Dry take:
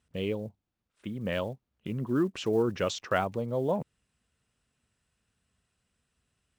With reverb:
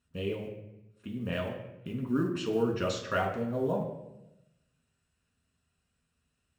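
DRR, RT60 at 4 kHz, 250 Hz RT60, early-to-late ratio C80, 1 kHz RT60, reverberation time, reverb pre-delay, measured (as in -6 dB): -0.5 dB, 0.65 s, 1.2 s, 8.5 dB, 0.85 s, 0.95 s, 4 ms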